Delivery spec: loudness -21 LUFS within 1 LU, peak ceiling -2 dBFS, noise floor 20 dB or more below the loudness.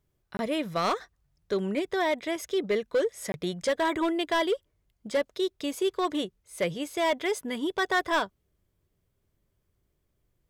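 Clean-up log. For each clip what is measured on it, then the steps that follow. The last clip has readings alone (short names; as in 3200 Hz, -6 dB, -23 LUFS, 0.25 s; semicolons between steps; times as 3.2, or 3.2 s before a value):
clipped 1.4%; flat tops at -20.0 dBFS; dropouts 2; longest dropout 21 ms; loudness -29.0 LUFS; peak -20.0 dBFS; loudness target -21.0 LUFS
-> clip repair -20 dBFS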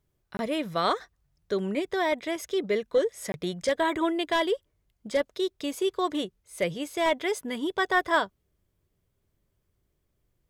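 clipped 0.0%; dropouts 2; longest dropout 21 ms
-> interpolate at 0.37/3.32, 21 ms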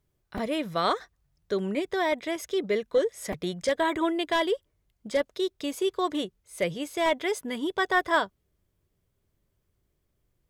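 dropouts 0; loudness -28.5 LUFS; peak -11.0 dBFS; loudness target -21.0 LUFS
-> gain +7.5 dB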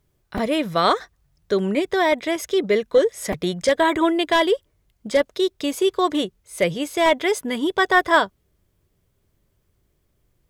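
loudness -21.0 LUFS; peak -3.5 dBFS; noise floor -68 dBFS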